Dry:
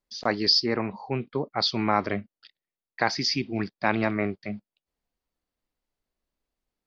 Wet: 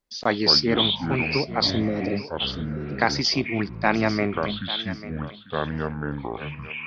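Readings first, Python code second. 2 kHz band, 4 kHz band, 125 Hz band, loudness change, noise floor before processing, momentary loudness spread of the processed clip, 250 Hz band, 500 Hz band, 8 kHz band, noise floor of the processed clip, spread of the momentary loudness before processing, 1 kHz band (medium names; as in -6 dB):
+4.5 dB, +5.0 dB, +6.5 dB, +2.0 dB, under -85 dBFS, 13 LU, +4.5 dB, +4.0 dB, no reading, -42 dBFS, 12 LU, +2.0 dB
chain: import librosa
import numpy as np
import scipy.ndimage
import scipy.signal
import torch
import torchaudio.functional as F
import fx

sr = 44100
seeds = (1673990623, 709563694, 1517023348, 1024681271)

y = fx.spec_repair(x, sr, seeds[0], start_s=1.67, length_s=0.46, low_hz=580.0, high_hz=3700.0, source='after')
y = fx.echo_pitch(y, sr, ms=105, semitones=-6, count=2, db_per_echo=-6.0)
y = fx.echo_thinned(y, sr, ms=844, feedback_pct=25, hz=210.0, wet_db=-14)
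y = y * librosa.db_to_amplitude(3.0)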